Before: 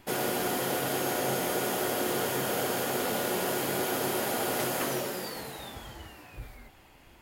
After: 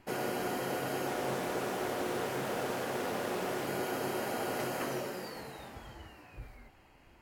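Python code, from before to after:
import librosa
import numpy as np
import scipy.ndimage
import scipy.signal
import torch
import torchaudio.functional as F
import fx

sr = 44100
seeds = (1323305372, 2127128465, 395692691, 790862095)

y = fx.high_shelf(x, sr, hz=6200.0, db=-10.0)
y = fx.notch(y, sr, hz=3500.0, q=6.5)
y = fx.doppler_dist(y, sr, depth_ms=0.36, at=(1.07, 3.67))
y = y * 10.0 ** (-4.0 / 20.0)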